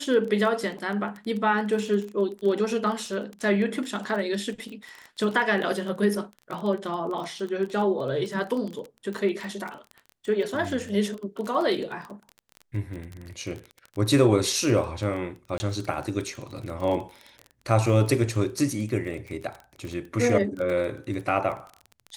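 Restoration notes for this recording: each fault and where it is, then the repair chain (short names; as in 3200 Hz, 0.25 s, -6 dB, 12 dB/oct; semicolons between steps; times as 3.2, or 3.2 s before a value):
crackle 22/s -31 dBFS
15.58–15.6 gap 20 ms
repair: de-click; interpolate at 15.58, 20 ms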